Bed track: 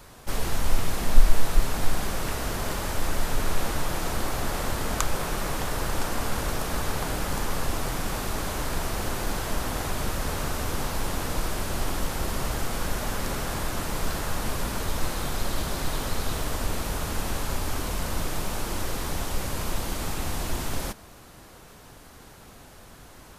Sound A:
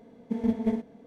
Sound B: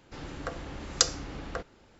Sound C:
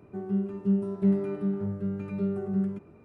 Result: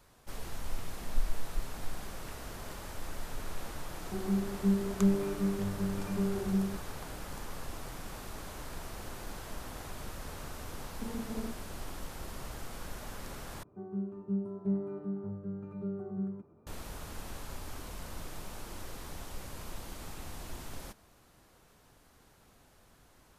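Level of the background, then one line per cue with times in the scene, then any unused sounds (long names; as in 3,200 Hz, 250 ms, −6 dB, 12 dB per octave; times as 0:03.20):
bed track −14 dB
0:03.98: mix in C −3 dB
0:10.71: mix in A −6.5 dB + downward compressor, threshold −28 dBFS
0:13.63: overwrite with C −8.5 dB + high shelf with overshoot 1,600 Hz −9.5 dB, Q 1.5
not used: B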